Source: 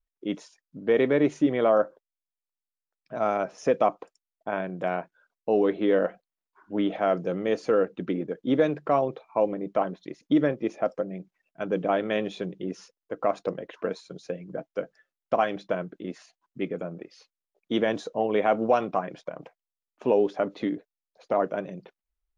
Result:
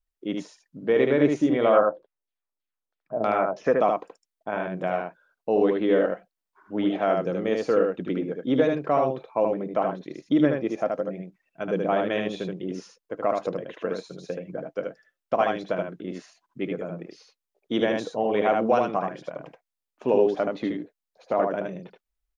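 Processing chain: 1.63–3.79 s: LFO low-pass saw down 3.1 Hz 330–4400 Hz; delay 76 ms -3.5 dB

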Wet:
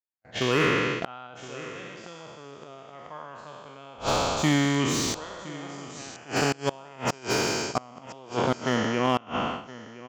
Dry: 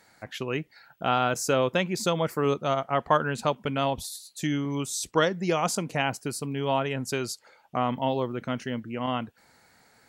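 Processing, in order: spectral sustain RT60 2.86 s; gate -32 dBFS, range -55 dB; 0.59–1.27 s: dynamic bell 1.3 kHz, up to +5 dB, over -37 dBFS, Q 1; inverted gate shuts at -13 dBFS, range -26 dB; resampled via 16 kHz; delay 1018 ms -17.5 dB; slew-rate limiter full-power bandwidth 140 Hz; trim +3.5 dB

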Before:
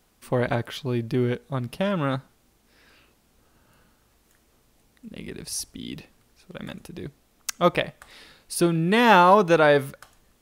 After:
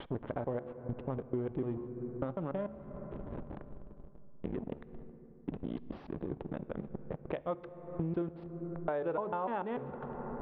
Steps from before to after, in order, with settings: slices played last to first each 148 ms, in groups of 6; de-hum 71.24 Hz, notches 12; reverse; upward compressor, threshold -26 dBFS; reverse; hysteresis with a dead band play -28.5 dBFS; tone controls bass -6 dB, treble -6 dB; on a send at -17 dB: reverberation RT60 3.2 s, pre-delay 3 ms; on the sum: compression 5:1, threshold -44 dBFS, peak gain reduction 27.5 dB; level-controlled noise filter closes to 610 Hz, open at -20 dBFS; resonant high shelf 5.2 kHz -14 dB, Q 3; trim +9.5 dB

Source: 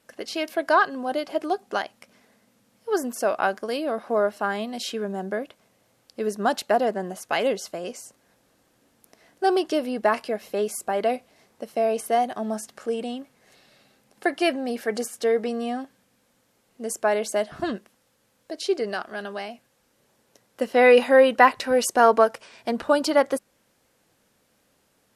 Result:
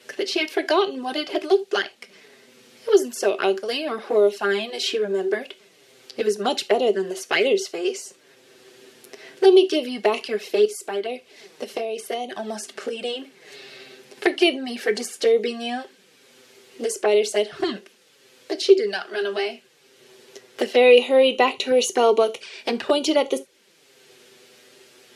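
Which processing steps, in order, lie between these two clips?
touch-sensitive flanger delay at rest 8.2 ms, full sweep at -19 dBFS; peaking EQ 390 Hz +15 dB 0.39 oct; 10.65–13.05 s: compression 3:1, threshold -31 dBFS, peak gain reduction 12 dB; frequency weighting D; gated-style reverb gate 100 ms falling, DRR 11 dB; three bands compressed up and down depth 40%

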